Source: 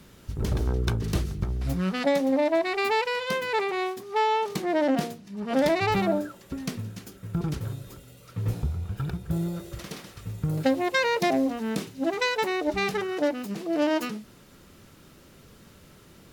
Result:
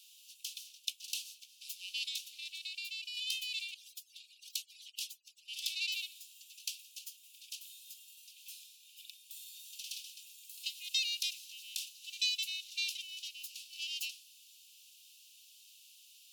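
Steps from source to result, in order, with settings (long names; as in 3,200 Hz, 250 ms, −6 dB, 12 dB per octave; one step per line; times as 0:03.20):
0:03.74–0:05.48: harmonic-percussive split with one part muted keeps percussive
Butterworth high-pass 2,600 Hz 96 dB per octave
0:02.59–0:03.17: downward compressor 6 to 1, threshold −41 dBFS, peak gain reduction 9 dB
level +1 dB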